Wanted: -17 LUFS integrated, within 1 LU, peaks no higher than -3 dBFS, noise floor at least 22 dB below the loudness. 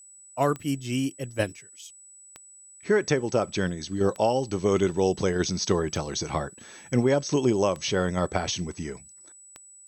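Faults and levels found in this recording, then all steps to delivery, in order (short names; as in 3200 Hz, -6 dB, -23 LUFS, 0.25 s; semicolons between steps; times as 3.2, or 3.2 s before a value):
clicks 6; steady tone 7900 Hz; tone level -48 dBFS; loudness -26.5 LUFS; peak -8.0 dBFS; loudness target -17.0 LUFS
-> de-click; notch 7900 Hz, Q 30; gain +9.5 dB; limiter -3 dBFS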